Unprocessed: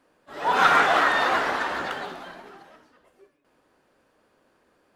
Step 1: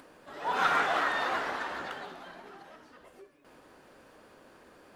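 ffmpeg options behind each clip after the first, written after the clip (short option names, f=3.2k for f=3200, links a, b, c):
-af "acompressor=mode=upward:threshold=-32dB:ratio=2.5,volume=-8.5dB"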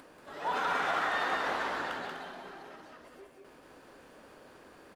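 -af "alimiter=limit=-23dB:level=0:latency=1:release=116,aecho=1:1:183.7|250.7:0.631|0.282"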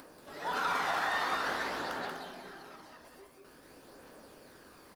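-af "aexciter=amount=2.1:drive=4.3:freq=4.2k,aphaser=in_gain=1:out_gain=1:delay=1.2:decay=0.29:speed=0.49:type=triangular,volume=-1.5dB"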